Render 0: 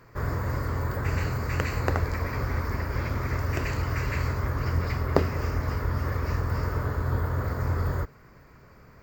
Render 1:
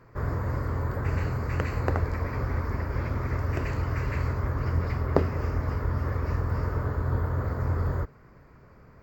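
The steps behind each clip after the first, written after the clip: treble shelf 2.3 kHz -10 dB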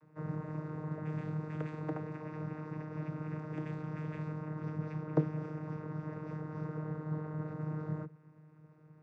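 vocoder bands 16, saw 154 Hz; trim -6.5 dB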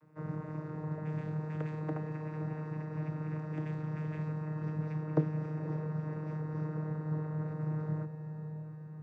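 echo that smears into a reverb 547 ms, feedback 56%, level -9.5 dB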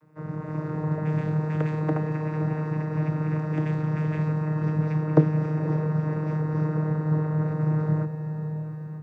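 level rider gain up to 7 dB; trim +4 dB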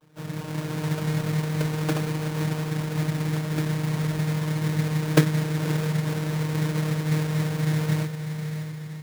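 sample-rate reducer 2 kHz, jitter 20%

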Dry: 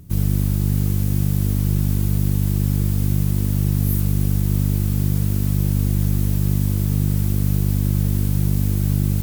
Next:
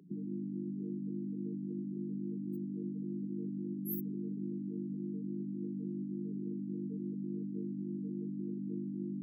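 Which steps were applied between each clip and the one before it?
spectral gate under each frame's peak -25 dB strong; elliptic high-pass 180 Hz, stop band 50 dB; hum notches 50/100/150/200/250 Hz; trim -5.5 dB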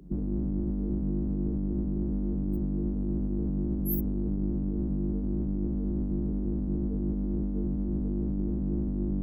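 octave divider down 2 oct, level +1 dB; trim +7 dB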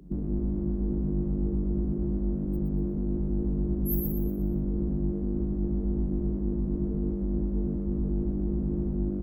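feedback delay 120 ms, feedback 38%, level -4 dB

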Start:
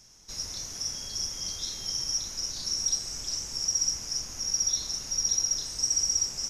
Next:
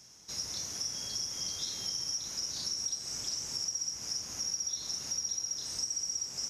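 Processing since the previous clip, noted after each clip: high-pass 91 Hz 12 dB/octave; compression, threshold -32 dBFS, peak gain reduction 10 dB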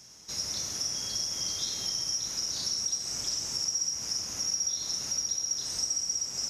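reverberation RT60 0.40 s, pre-delay 55 ms, DRR 7 dB; trim +3.5 dB

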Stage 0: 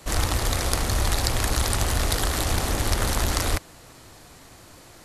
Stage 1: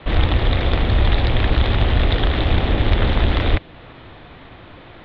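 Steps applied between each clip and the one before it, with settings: Chebyshev low-pass 3.6 kHz, order 5; dynamic bell 1.2 kHz, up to -6 dB, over -44 dBFS, Q 0.85; trim +8.5 dB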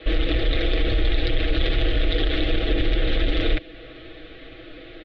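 comb 6.2 ms, depth 80%; peak limiter -11.5 dBFS, peak gain reduction 9 dB; static phaser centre 390 Hz, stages 4; trim +1 dB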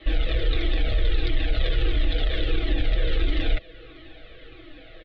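Shepard-style flanger falling 1.5 Hz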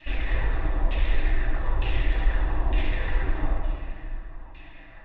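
comb filter that takes the minimum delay 1.1 ms; LFO low-pass saw down 1.1 Hz 930–2800 Hz; reverberation RT60 2.0 s, pre-delay 7 ms, DRR -1.5 dB; trim -6 dB

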